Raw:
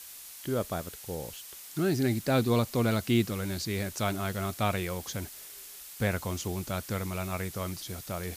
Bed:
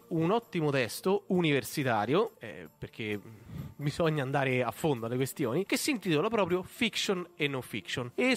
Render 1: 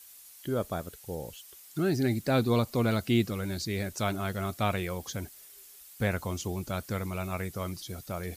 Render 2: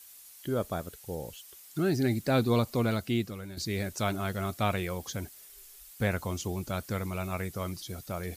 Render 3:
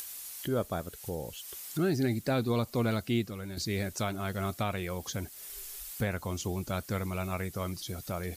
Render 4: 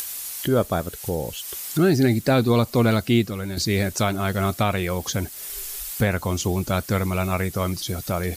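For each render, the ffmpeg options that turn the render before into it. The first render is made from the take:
-af "afftdn=nr=9:nf=-47"
-filter_complex "[0:a]asplit=3[a][b][c];[a]afade=t=out:st=5.47:d=0.02[d];[b]asubboost=boost=9.5:cutoff=54,afade=t=in:st=5.47:d=0.02,afade=t=out:st=5.91:d=0.02[e];[c]afade=t=in:st=5.91:d=0.02[f];[d][e][f]amix=inputs=3:normalize=0,asplit=2[g][h];[g]atrim=end=3.57,asetpts=PTS-STARTPTS,afade=t=out:st=2.7:d=0.87:silence=0.298538[i];[h]atrim=start=3.57,asetpts=PTS-STARTPTS,afade=t=in:d=0.004:c=hsin:silence=0.298538[j];[i][j]concat=n=2:v=0:a=1"
-af "alimiter=limit=-19dB:level=0:latency=1:release=376,acompressor=mode=upward:threshold=-33dB:ratio=2.5"
-af "volume=10.5dB"

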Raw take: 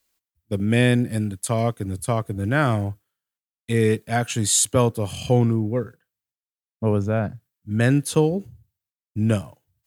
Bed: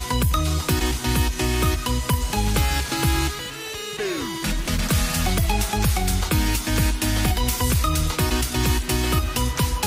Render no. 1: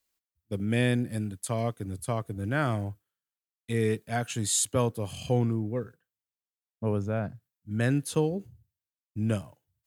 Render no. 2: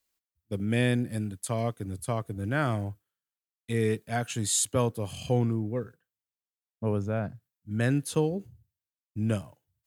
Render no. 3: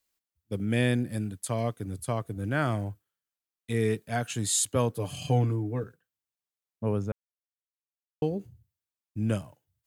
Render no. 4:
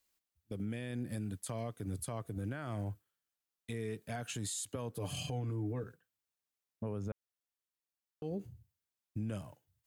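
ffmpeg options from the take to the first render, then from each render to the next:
-af "volume=-7.5dB"
-af anull
-filter_complex "[0:a]asettb=1/sr,asplit=3[a][b][c];[a]atrim=end=4.954[d];[b]atrim=start=4.95:end=5.84,asetpts=PTS-STARTPTS,afade=t=in:d=0.004:c=qsin,afade=t=out:st=0.886:d=0.004:c=qsin,aecho=1:1:6.8:0.65,atrim=end_sample=39249[e];[c]atrim=start=5.836[f];[d][e]acrossfade=d=0.004:c1=hsin:c2=qsin[g];[g][f]acrossfade=d=0.004:c1=qsin:c2=hsin,asplit=3[h][i][j];[h]atrim=end=7.12,asetpts=PTS-STARTPTS,afade=t=out:st=7.116:d=0.004:c=hsin[k];[i]atrim=start=7.12:end=8.22,asetpts=PTS-STARTPTS,volume=0[l];[j]atrim=start=8.22,asetpts=PTS-STARTPTS,afade=t=in:d=0.004:c=hsin[m];[k][l][m]concat=n=3:v=0:a=1"
-af "acompressor=threshold=-31dB:ratio=6,alimiter=level_in=6.5dB:limit=-24dB:level=0:latency=1:release=70,volume=-6.5dB"

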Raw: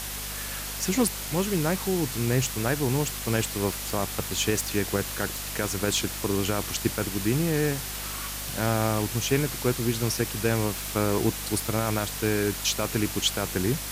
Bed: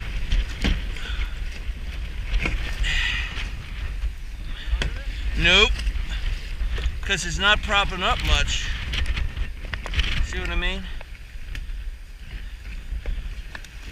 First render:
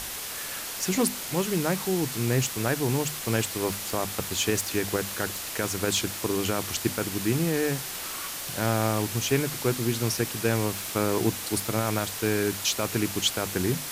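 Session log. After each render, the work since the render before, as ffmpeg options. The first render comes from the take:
-af "bandreject=f=50:t=h:w=6,bandreject=f=100:t=h:w=6,bandreject=f=150:t=h:w=6,bandreject=f=200:t=h:w=6,bandreject=f=250:t=h:w=6"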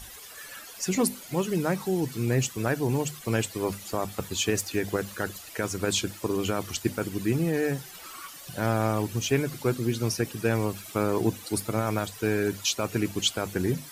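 -af "afftdn=nr=14:nf=-35"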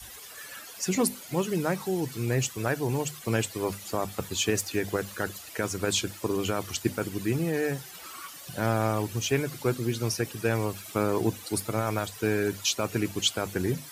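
-af "highpass=55,adynamicequalizer=threshold=0.0112:dfrequency=220:dqfactor=1.1:tfrequency=220:tqfactor=1.1:attack=5:release=100:ratio=0.375:range=2.5:mode=cutabove:tftype=bell"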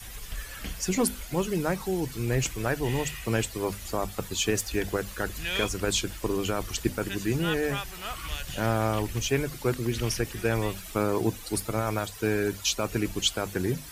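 -filter_complex "[1:a]volume=-15dB[a];[0:a][a]amix=inputs=2:normalize=0"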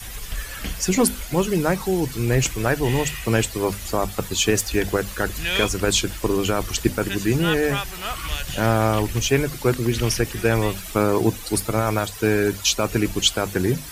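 -af "volume=7dB"

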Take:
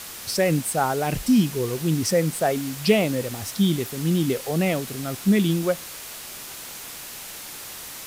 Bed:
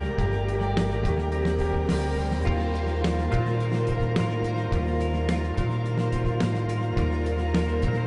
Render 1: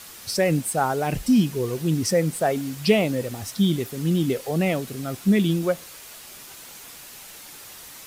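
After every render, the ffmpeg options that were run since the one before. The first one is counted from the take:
-af "afftdn=nr=6:nf=-38"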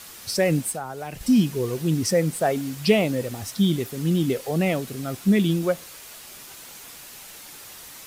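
-filter_complex "[0:a]asettb=1/sr,asplit=3[a][b][c];[a]atrim=end=0.714[d];[b]atrim=start=0.71:end=1.21,asetpts=PTS-STARTPTS,afade=t=in:d=0.004:c=qsin,afade=t=out:st=0.496:d=0.004:c=qsin,acrossover=split=99|510[e][f][g];[e]acompressor=threshold=-49dB:ratio=4[h];[f]acompressor=threshold=-41dB:ratio=4[i];[g]acompressor=threshold=-33dB:ratio=4[j];[h][i][j]amix=inputs=3:normalize=0[k];[c]atrim=start=1.206[l];[d][k]acrossfade=d=0.004:c1=hsin:c2=qsin[m];[m][l]acrossfade=d=0.004:c1=qsin:c2=hsin"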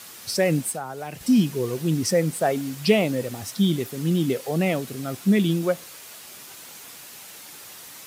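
-af "highpass=100"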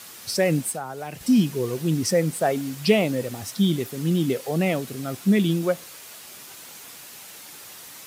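-af anull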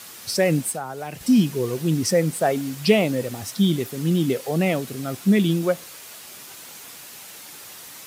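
-af "volume=1.5dB"

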